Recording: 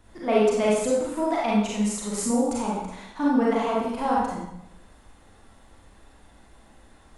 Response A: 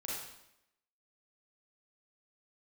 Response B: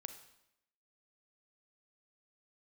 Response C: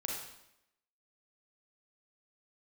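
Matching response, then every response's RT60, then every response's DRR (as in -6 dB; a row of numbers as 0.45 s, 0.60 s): A; 0.80 s, 0.80 s, 0.80 s; -6.0 dB, 8.0 dB, -1.5 dB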